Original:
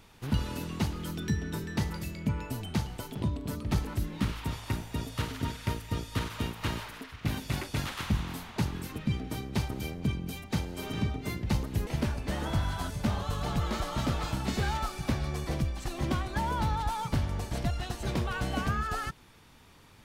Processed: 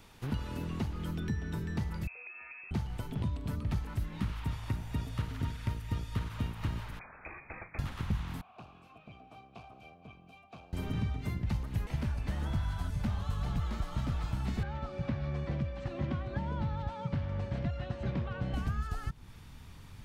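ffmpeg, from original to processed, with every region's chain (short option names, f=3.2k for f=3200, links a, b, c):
-filter_complex "[0:a]asettb=1/sr,asplit=3[a][b][c];[a]atrim=end=2.074[d];[b]atrim=start=2.07:end=2.71,asetpts=PTS-STARTPTS,afade=t=in:d=0.004:c=qsin,afade=t=out:st=0.636:d=0.004:c=qsin,acompressor=threshold=-36dB:ratio=3:attack=3.2:release=140:knee=1:detection=peak,lowpass=f=2.3k:t=q:w=0.5098,lowpass=f=2.3k:t=q:w=0.6013,lowpass=f=2.3k:t=q:w=0.9,lowpass=f=2.3k:t=q:w=2.563,afreqshift=-2700,highpass=f=540:p=1[e];[c]atrim=start=2.706[f];[d][e]acrossfade=d=0.004:c1=hsin:c2=qsin[g];[g][f]acrossfade=d=0.004:c1=qsin:c2=hsin,asettb=1/sr,asplit=3[h][i][j];[h]atrim=end=6.994[k];[i]atrim=start=6.99:end=7.79,asetpts=PTS-STARTPTS,afade=t=in:d=0.004:c=qsin,afade=t=out:st=0.796:d=0.004:c=qsin,highpass=370,lowpass=f=2.3k:t=q:w=0.5098,lowpass=f=2.3k:t=q:w=0.6013,lowpass=f=2.3k:t=q:w=0.9,lowpass=f=2.3k:t=q:w=2.563,afreqshift=-2700[l];[j]atrim=start=7.786[m];[k][l]acrossfade=d=0.004:c1=hsin:c2=qsin[n];[n][m]acrossfade=d=0.004:c1=qsin:c2=hsin,asettb=1/sr,asplit=3[o][p][q];[o]atrim=end=8.414[r];[p]atrim=start=8.41:end=10.73,asetpts=PTS-STARTPTS,afade=t=in:d=0.004:c=qsin,afade=t=out:st=2.316:d=0.004:c=qsin,aeval=exprs='clip(val(0),-1,0.0266)':c=same,asplit=3[s][t][u];[s]bandpass=f=730:t=q:w=8,volume=0dB[v];[t]bandpass=f=1.09k:t=q:w=8,volume=-6dB[w];[u]bandpass=f=2.44k:t=q:w=8,volume=-9dB[x];[v][w][x]amix=inputs=3:normalize=0[y];[q]atrim=start=10.726[z];[r][y]acrossfade=d=0.004:c1=hsin:c2=qsin[aa];[aa][z]acrossfade=d=0.004:c1=qsin:c2=hsin,asettb=1/sr,asplit=3[ab][ac][ad];[ab]atrim=end=14.634[ae];[ac]atrim=start=14.63:end=18.54,asetpts=PTS-STARTPTS,afade=t=in:d=0.004:c=qsin,afade=t=out:st=3.906:d=0.004:c=qsin,highpass=110,lowpass=2.3k,aeval=exprs='val(0)+0.0158*sin(2*PI*560*n/s)':c=same[af];[ad]atrim=start=18.536[ag];[ae][af]acrossfade=d=0.004:c1=hsin:c2=qsin[ah];[ah][ag]acrossfade=d=0.004:c1=qsin:c2=hsin,asubboost=boost=3.5:cutoff=190,acrossover=split=570|1200|2900[ai][aj][ak][al];[ai]acompressor=threshold=-32dB:ratio=4[am];[aj]acompressor=threshold=-51dB:ratio=4[an];[ak]acompressor=threshold=-52dB:ratio=4[ao];[al]acompressor=threshold=-59dB:ratio=4[ap];[am][an][ao][ap]amix=inputs=4:normalize=0"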